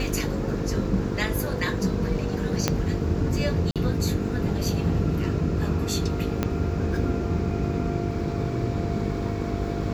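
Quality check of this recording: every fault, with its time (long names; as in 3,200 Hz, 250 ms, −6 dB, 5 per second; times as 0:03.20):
mains buzz 50 Hz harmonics 9 −30 dBFS
0:02.68: click −6 dBFS
0:03.71–0:03.76: drop-out 47 ms
0:06.43: click −10 dBFS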